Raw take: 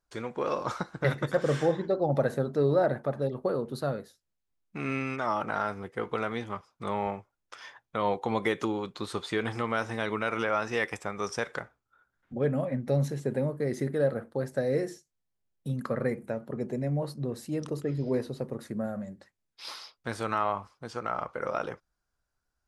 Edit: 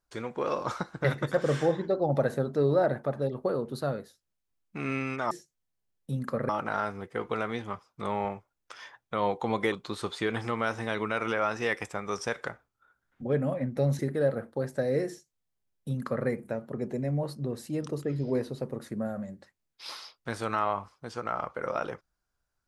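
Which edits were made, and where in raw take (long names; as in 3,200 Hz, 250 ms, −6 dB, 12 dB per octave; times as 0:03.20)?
0:08.54–0:08.83: remove
0:13.10–0:13.78: remove
0:14.88–0:16.06: duplicate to 0:05.31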